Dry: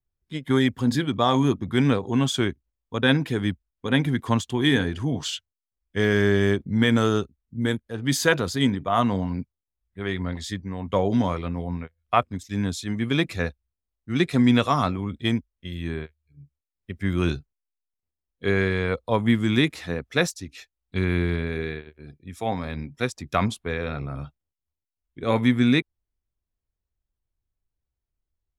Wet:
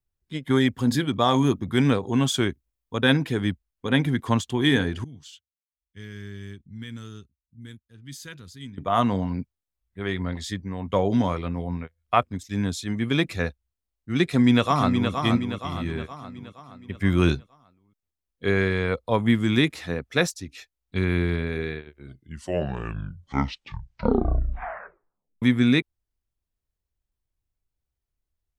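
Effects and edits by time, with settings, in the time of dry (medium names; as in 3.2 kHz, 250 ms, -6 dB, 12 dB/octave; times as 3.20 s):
0.79–3.22 s: treble shelf 8.8 kHz +6.5 dB
5.04–8.78 s: amplifier tone stack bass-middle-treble 6-0-2
14.23–15.11 s: echo throw 470 ms, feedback 50%, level -6 dB
16.95–17.35 s: gain +3.5 dB
21.79 s: tape stop 3.63 s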